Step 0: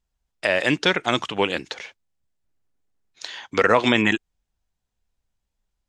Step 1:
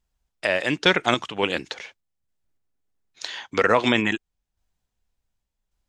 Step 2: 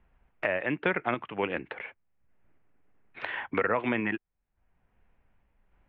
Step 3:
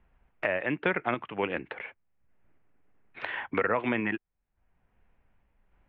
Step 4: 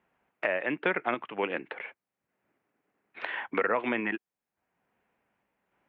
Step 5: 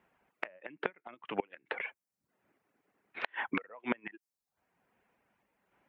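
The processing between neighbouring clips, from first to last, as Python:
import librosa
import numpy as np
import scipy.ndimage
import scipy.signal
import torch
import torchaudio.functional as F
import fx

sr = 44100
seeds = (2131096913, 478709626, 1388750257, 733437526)

y1 = fx.tremolo_random(x, sr, seeds[0], hz=3.5, depth_pct=55)
y1 = F.gain(torch.from_numpy(y1), 2.5).numpy()
y2 = scipy.signal.sosfilt(scipy.signal.butter(6, 2500.0, 'lowpass', fs=sr, output='sos'), y1)
y2 = fx.band_squash(y2, sr, depth_pct=70)
y2 = F.gain(torch.from_numpy(y2), -6.5).numpy()
y3 = y2
y4 = scipy.signal.sosfilt(scipy.signal.butter(2, 230.0, 'highpass', fs=sr, output='sos'), y3)
y5 = fx.gate_flip(y4, sr, shuts_db=-19.0, range_db=-24)
y5 = fx.dereverb_blind(y5, sr, rt60_s=0.56)
y5 = F.gain(torch.from_numpy(y5), 2.5).numpy()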